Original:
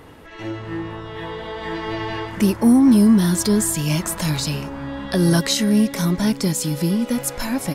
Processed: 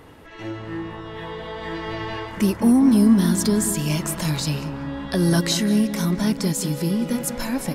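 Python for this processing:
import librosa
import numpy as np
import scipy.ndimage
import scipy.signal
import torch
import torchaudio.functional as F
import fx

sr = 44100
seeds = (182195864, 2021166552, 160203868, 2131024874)

y = fx.echo_filtered(x, sr, ms=188, feedback_pct=53, hz=2100.0, wet_db=-10.5)
y = y * 10.0 ** (-2.5 / 20.0)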